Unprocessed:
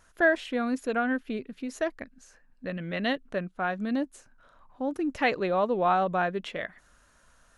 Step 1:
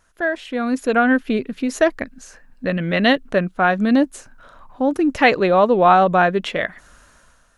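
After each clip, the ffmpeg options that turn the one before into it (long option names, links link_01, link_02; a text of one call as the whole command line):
ffmpeg -i in.wav -af "dynaudnorm=framelen=140:gausssize=9:maxgain=14dB" out.wav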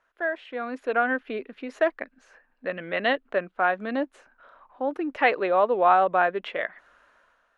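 ffmpeg -i in.wav -filter_complex "[0:a]acrossover=split=340 3300:gain=0.112 1 0.0794[link_01][link_02][link_03];[link_01][link_02][link_03]amix=inputs=3:normalize=0,volume=-5.5dB" out.wav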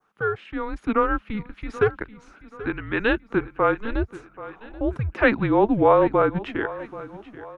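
ffmpeg -i in.wav -af "adynamicequalizer=threshold=0.00891:dfrequency=2800:dqfactor=0.97:tfrequency=2800:tqfactor=0.97:attack=5:release=100:ratio=0.375:range=2.5:mode=cutabove:tftype=bell,afreqshift=-220,aecho=1:1:782|1564|2346|3128:0.141|0.0622|0.0273|0.012,volume=3dB" out.wav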